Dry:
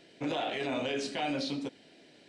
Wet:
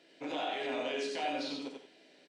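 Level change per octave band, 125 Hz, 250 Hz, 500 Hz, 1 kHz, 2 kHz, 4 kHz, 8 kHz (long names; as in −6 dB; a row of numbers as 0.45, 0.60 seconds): −16.0, −5.5, −2.0, −0.5, −2.0, −2.5, −4.0 decibels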